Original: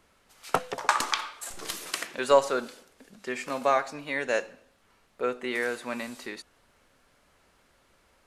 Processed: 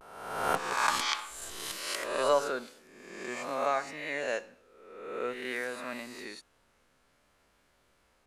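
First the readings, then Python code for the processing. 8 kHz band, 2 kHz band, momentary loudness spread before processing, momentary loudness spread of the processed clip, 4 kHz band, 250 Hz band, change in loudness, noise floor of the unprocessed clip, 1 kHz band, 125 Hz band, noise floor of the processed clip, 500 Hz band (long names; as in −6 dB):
−2.0 dB, −2.5 dB, 18 LU, 17 LU, −1.0 dB, −5.5 dB, −3.5 dB, −65 dBFS, −3.0 dB, −4.0 dB, −69 dBFS, −4.5 dB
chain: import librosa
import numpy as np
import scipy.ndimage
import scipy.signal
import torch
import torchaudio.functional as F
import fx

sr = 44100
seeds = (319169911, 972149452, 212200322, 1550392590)

y = fx.spec_swells(x, sr, rise_s=1.11)
y = fx.vibrato(y, sr, rate_hz=0.56, depth_cents=53.0)
y = y * librosa.db_to_amplitude(-7.5)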